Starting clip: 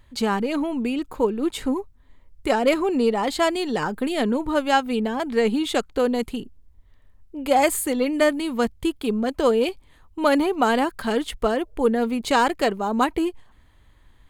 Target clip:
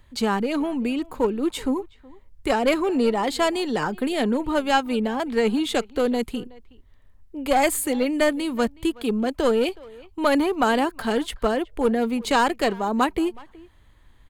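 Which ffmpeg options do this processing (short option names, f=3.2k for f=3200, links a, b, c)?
-filter_complex "[0:a]acrossover=split=330|1000[a][b][c];[b]aeval=exprs='clip(val(0),-1,0.0708)':c=same[d];[a][d][c]amix=inputs=3:normalize=0,asplit=2[e][f];[f]adelay=370,highpass=300,lowpass=3.4k,asoftclip=type=hard:threshold=-15dB,volume=-21dB[g];[e][g]amix=inputs=2:normalize=0"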